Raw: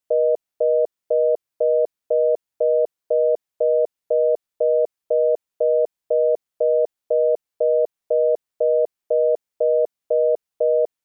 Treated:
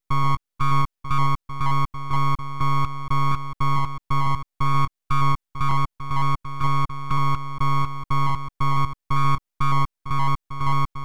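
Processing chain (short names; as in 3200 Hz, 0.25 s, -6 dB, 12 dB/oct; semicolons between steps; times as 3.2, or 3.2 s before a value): reverse delay 0.237 s, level -10.5 dB; 5.71–7.18 HPF 360 Hz 24 dB/oct; full-wave rectifier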